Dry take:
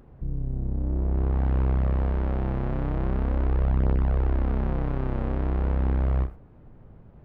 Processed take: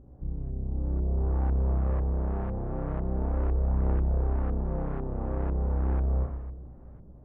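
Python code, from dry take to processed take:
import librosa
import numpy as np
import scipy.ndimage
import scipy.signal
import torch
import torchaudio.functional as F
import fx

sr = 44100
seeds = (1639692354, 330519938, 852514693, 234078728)

y = fx.rev_double_slope(x, sr, seeds[0], early_s=0.83, late_s=3.4, knee_db=-19, drr_db=-0.5)
y = fx.filter_lfo_lowpass(y, sr, shape='saw_up', hz=2.0, low_hz=530.0, high_hz=1900.0, q=0.72)
y = fx.add_hum(y, sr, base_hz=60, snr_db=28)
y = F.gain(torch.from_numpy(y), -4.5).numpy()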